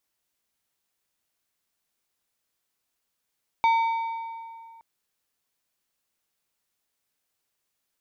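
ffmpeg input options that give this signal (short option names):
-f lavfi -i "aevalsrc='0.15*pow(10,-3*t/2.28)*sin(2*PI*912*t)+0.0473*pow(10,-3*t/1.732)*sin(2*PI*2280*t)+0.015*pow(10,-3*t/1.504)*sin(2*PI*3648*t)+0.00473*pow(10,-3*t/1.407)*sin(2*PI*4560*t)+0.0015*pow(10,-3*t/1.3)*sin(2*PI*5928*t)':d=1.17:s=44100"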